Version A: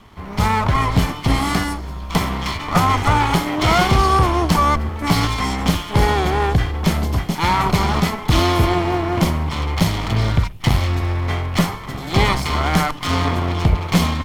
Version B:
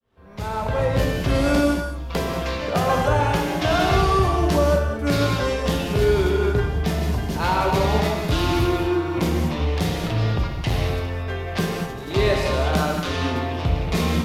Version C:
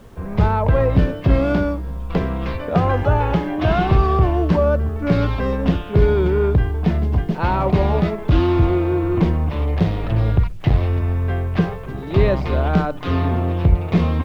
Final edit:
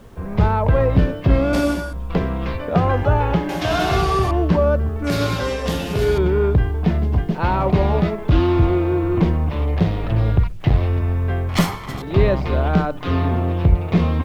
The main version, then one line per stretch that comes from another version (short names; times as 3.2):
C
1.53–1.93 from B
3.49–4.31 from B
5.04–6.18 from B
11.49–12.02 from A